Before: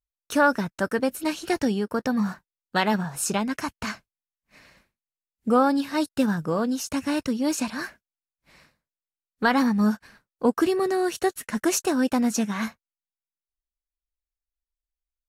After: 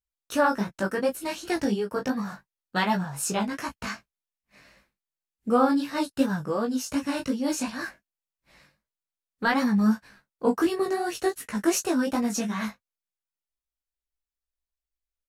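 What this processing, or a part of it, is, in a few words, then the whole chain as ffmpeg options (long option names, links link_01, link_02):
double-tracked vocal: -filter_complex "[0:a]asplit=2[link_01][link_02];[link_02]adelay=15,volume=-6dB[link_03];[link_01][link_03]amix=inputs=2:normalize=0,flanger=delay=16.5:depth=4.6:speed=2.7"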